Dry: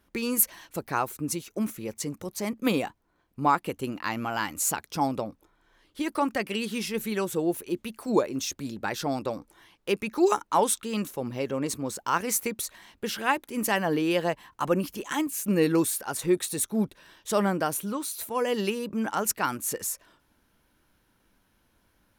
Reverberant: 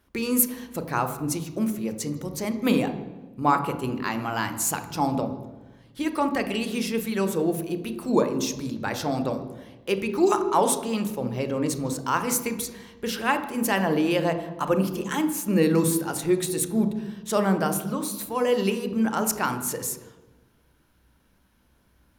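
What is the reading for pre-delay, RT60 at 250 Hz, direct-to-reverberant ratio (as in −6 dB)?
28 ms, 1.3 s, 7.5 dB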